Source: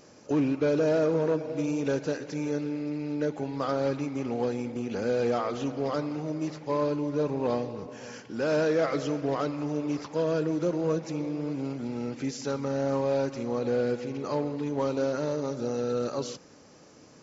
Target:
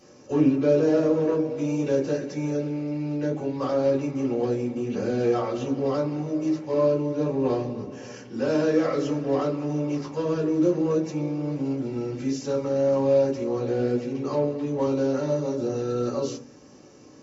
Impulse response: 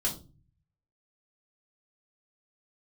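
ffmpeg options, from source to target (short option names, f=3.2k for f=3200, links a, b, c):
-filter_complex "[0:a]highpass=66[a];[1:a]atrim=start_sample=2205,asetrate=79380,aresample=44100[b];[a][b]afir=irnorm=-1:irlink=0"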